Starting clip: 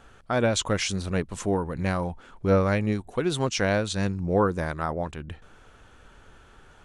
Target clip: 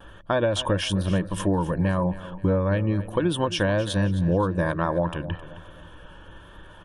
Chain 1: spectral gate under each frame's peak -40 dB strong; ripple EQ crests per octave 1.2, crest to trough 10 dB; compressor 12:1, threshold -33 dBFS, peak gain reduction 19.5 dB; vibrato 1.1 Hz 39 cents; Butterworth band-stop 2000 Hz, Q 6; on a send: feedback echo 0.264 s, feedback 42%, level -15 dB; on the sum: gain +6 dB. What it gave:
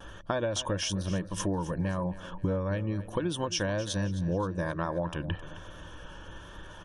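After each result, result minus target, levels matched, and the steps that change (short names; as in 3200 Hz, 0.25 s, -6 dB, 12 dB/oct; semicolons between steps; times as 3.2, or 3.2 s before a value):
8000 Hz band +8.5 dB; compressor: peak gain reduction +8 dB
add after Butterworth band-stop: bell 5900 Hz -13.5 dB 0.53 oct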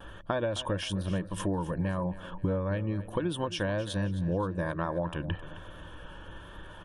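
compressor: peak gain reduction +8 dB
change: compressor 12:1, threshold -24.5 dBFS, peak gain reduction 12 dB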